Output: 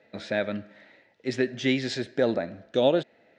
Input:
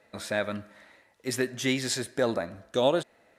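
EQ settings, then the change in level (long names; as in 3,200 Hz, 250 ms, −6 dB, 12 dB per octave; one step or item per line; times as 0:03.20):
band-pass filter 120–5,600 Hz
high-frequency loss of the air 120 metres
parametric band 1,100 Hz −12 dB 0.65 octaves
+4.0 dB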